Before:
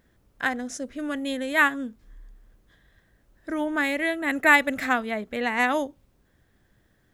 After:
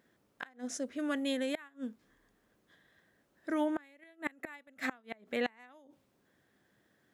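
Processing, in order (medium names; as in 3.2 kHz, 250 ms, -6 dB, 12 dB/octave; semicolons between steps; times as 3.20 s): high-pass 190 Hz 12 dB/octave; treble shelf 9.8 kHz -3.5 dB; inverted gate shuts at -18 dBFS, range -30 dB; trim -3.5 dB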